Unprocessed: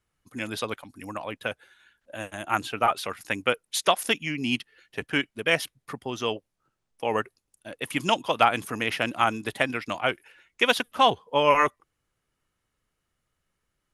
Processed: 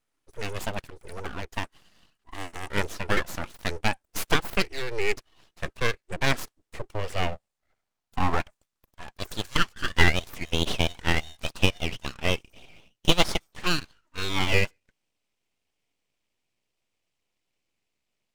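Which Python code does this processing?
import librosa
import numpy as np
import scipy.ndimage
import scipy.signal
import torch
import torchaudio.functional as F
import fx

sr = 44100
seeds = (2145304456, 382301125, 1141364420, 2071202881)

y = fx.speed_glide(x, sr, from_pct=94, to_pct=58)
y = fx.filter_sweep_highpass(y, sr, from_hz=160.0, to_hz=1200.0, start_s=6.38, end_s=10.35, q=2.6)
y = np.abs(y)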